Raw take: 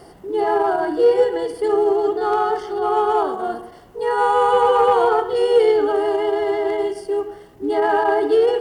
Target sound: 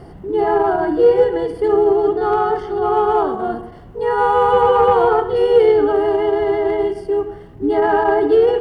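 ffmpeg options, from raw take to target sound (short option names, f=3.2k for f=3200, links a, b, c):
-af "bass=f=250:g=12,treble=f=4k:g=-11,volume=1.5dB"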